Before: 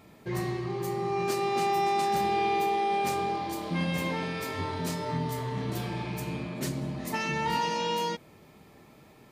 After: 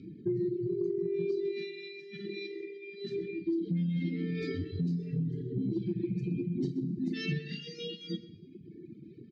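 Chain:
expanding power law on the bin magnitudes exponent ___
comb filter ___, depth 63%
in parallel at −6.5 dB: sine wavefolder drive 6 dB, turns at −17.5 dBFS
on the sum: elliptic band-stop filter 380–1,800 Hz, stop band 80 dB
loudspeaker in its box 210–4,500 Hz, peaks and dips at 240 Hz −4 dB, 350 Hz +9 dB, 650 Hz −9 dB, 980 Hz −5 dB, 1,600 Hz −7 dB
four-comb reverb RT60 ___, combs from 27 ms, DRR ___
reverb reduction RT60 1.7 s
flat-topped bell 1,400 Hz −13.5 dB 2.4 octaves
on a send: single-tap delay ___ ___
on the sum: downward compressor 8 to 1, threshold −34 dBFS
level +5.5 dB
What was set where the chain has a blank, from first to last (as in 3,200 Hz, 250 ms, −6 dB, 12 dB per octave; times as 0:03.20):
2, 1.3 ms, 0.91 s, 4 dB, 128 ms, −17.5 dB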